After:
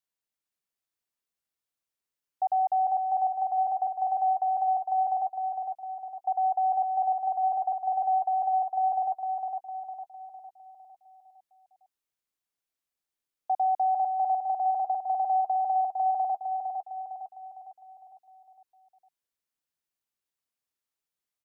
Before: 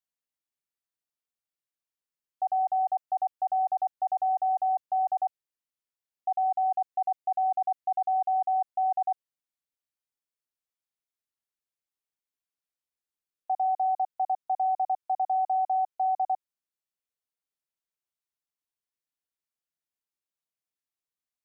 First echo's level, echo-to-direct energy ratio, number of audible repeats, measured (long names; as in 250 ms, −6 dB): −5.0 dB, −4.0 dB, 5